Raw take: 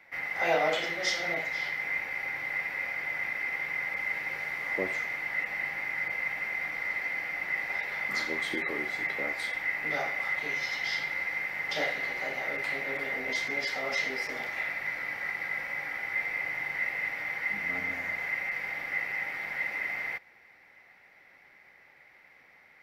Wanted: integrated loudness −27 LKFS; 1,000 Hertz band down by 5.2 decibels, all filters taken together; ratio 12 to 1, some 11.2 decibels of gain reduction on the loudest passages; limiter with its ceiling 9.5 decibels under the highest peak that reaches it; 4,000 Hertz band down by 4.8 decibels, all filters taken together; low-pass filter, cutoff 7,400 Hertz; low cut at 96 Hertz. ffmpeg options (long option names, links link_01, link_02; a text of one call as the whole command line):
ffmpeg -i in.wav -af "highpass=96,lowpass=7400,equalizer=frequency=1000:width_type=o:gain=-7.5,equalizer=frequency=4000:width_type=o:gain=-5.5,acompressor=threshold=-36dB:ratio=12,volume=15dB,alimiter=limit=-21dB:level=0:latency=1" out.wav